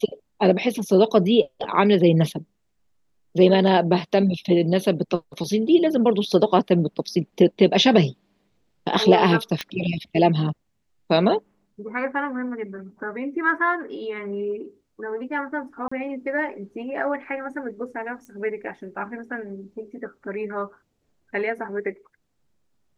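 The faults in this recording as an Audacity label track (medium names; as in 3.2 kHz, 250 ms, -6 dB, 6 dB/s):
9.610000	9.610000	pop -11 dBFS
15.880000	15.910000	dropout 35 ms
18.250000	18.250000	pop -29 dBFS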